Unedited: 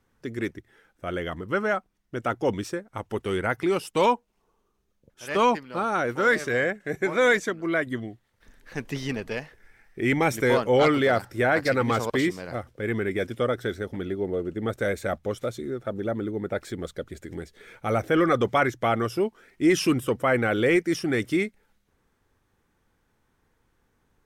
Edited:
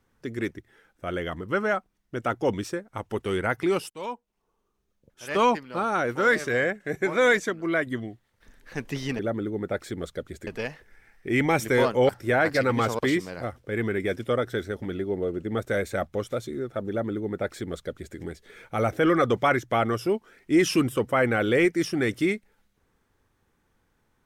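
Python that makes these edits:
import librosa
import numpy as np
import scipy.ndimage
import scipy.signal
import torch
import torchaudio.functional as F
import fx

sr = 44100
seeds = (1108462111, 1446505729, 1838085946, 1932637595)

y = fx.edit(x, sr, fx.fade_in_from(start_s=3.9, length_s=1.79, curve='qsin', floor_db=-21.0),
    fx.cut(start_s=10.81, length_s=0.39),
    fx.duplicate(start_s=16.0, length_s=1.28, to_s=9.19), tone=tone)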